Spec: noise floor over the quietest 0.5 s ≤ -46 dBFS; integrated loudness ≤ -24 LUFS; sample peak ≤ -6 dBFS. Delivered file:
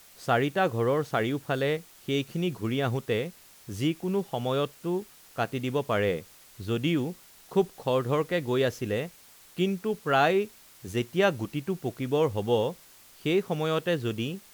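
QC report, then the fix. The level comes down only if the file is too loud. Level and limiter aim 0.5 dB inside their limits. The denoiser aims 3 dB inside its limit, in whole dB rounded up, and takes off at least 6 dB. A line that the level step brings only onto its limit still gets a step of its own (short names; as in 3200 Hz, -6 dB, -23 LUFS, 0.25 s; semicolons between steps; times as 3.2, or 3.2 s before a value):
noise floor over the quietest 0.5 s -54 dBFS: OK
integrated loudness -28.5 LUFS: OK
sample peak -11.5 dBFS: OK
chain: none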